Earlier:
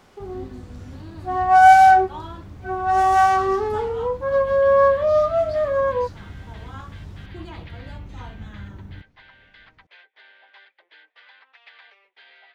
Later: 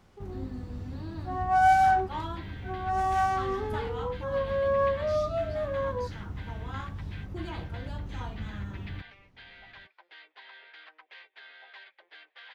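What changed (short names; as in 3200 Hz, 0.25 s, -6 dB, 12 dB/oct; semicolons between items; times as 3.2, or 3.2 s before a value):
first sound -10.5 dB; second sound: entry -2.80 s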